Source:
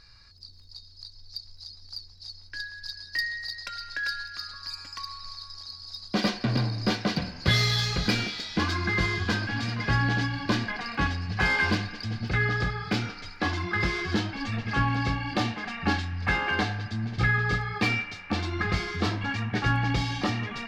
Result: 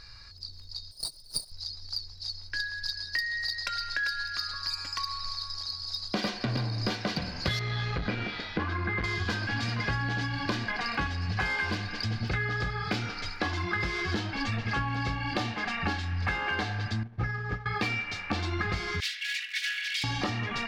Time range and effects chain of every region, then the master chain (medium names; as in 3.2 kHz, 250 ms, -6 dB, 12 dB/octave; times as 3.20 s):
0.91–1.52 s: comb filter that takes the minimum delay 6.6 ms + treble shelf 3.6 kHz +10.5 dB + gate -42 dBFS, range -10 dB
7.59–9.04 s: low-pass 2.2 kHz + transformer saturation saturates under 230 Hz
17.03–17.66 s: median filter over 15 samples + distance through air 220 m + upward expansion 2.5:1, over -34 dBFS
19.00–20.04 s: comb filter that takes the minimum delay 4.1 ms + steep high-pass 1.8 kHz 48 dB/octave + peaking EQ 3.4 kHz +3.5 dB 0.43 oct
whole clip: peaking EQ 220 Hz -3.5 dB 1.4 oct; compression, threshold -33 dBFS; trim +5.5 dB